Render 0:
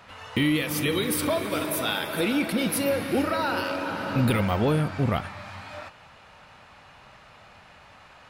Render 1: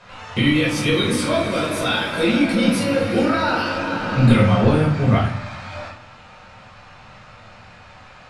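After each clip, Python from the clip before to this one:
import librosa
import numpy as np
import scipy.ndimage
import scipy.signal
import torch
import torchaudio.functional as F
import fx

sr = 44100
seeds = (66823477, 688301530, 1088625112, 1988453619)

y = scipy.signal.sosfilt(scipy.signal.butter(4, 8200.0, 'lowpass', fs=sr, output='sos'), x)
y = fx.high_shelf(y, sr, hz=5600.0, db=5.0)
y = fx.room_shoebox(y, sr, seeds[0], volume_m3=470.0, walls='furnished', distance_m=5.2)
y = y * librosa.db_to_amplitude(-2.5)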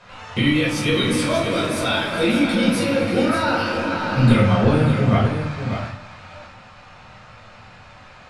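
y = x + 10.0 ** (-8.0 / 20.0) * np.pad(x, (int(586 * sr / 1000.0), 0))[:len(x)]
y = y * librosa.db_to_amplitude(-1.0)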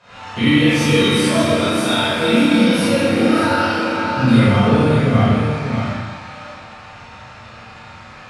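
y = scipy.signal.sosfilt(scipy.signal.butter(2, 42.0, 'highpass', fs=sr, output='sos'), x)
y = fx.rider(y, sr, range_db=3, speed_s=2.0)
y = fx.rev_schroeder(y, sr, rt60_s=1.2, comb_ms=27, drr_db=-9.0)
y = y * librosa.db_to_amplitude(-6.0)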